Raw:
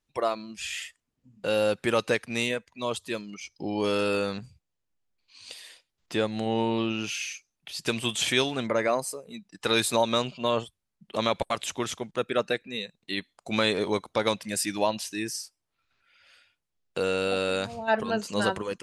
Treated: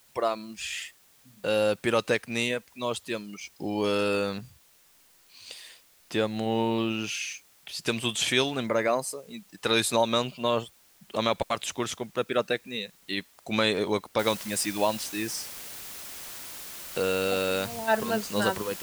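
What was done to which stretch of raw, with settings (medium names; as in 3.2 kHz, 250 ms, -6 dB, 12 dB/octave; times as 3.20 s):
14.19 s: noise floor step -60 dB -41 dB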